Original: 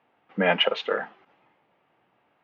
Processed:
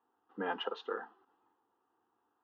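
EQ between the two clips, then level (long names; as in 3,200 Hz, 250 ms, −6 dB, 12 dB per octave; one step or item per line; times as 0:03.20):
low-shelf EQ 73 Hz −9 dB
high-shelf EQ 4,300 Hz −9.5 dB
phaser with its sweep stopped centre 600 Hz, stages 6
−7.5 dB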